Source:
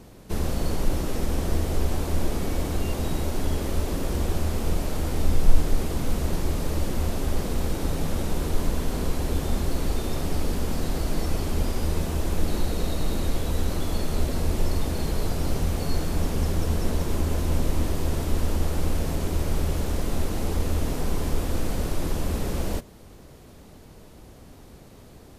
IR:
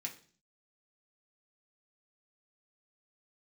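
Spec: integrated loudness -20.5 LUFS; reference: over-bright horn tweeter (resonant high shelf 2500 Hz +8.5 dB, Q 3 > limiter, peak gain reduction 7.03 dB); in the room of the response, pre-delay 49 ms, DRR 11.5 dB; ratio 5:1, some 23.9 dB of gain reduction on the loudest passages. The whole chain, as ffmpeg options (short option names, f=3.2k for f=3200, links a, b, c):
-filter_complex "[0:a]acompressor=threshold=-35dB:ratio=5,asplit=2[a][b];[1:a]atrim=start_sample=2205,adelay=49[c];[b][c]afir=irnorm=-1:irlink=0,volume=-10dB[d];[a][d]amix=inputs=2:normalize=0,highshelf=f=2.5k:t=q:w=3:g=8.5,volume=21dB,alimiter=limit=-9dB:level=0:latency=1"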